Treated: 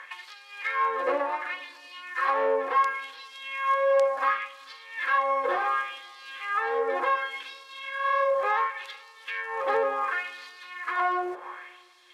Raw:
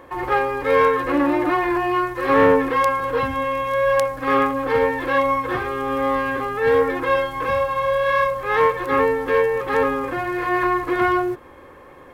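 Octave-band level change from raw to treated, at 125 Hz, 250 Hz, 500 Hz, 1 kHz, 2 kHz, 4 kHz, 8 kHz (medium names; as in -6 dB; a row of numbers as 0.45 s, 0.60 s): under -35 dB, -21.5 dB, -10.0 dB, -6.5 dB, -6.0 dB, -4.5 dB, no reading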